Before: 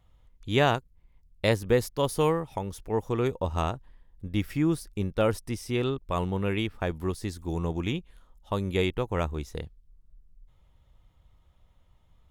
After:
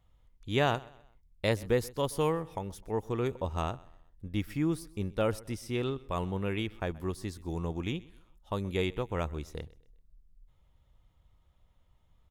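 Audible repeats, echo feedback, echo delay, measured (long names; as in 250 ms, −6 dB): 2, 38%, 128 ms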